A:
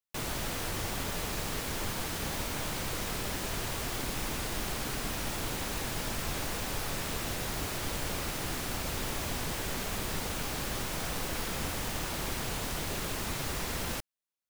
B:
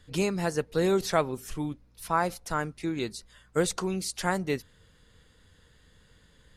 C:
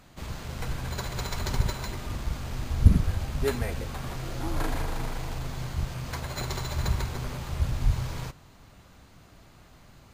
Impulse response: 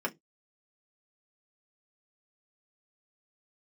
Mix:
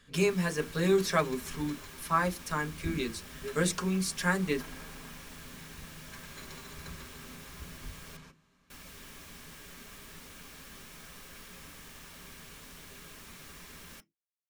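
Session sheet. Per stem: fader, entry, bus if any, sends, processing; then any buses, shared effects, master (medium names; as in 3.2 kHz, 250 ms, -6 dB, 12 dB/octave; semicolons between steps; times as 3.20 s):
-15.0 dB, 0.00 s, muted 8.17–8.70 s, send -7.5 dB, none
-3.5 dB, 0.00 s, send -3.5 dB, none
-16.5 dB, 0.00 s, send -3 dB, low-pass 12 kHz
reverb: on, pre-delay 3 ms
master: peaking EQ 670 Hz -9 dB 1.4 oct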